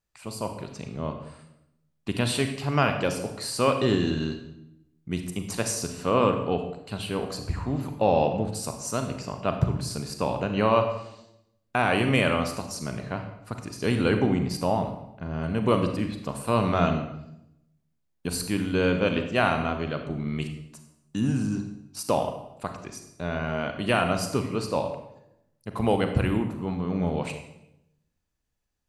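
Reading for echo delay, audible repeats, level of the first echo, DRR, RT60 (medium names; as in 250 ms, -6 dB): no echo, no echo, no echo, 5.5 dB, 0.85 s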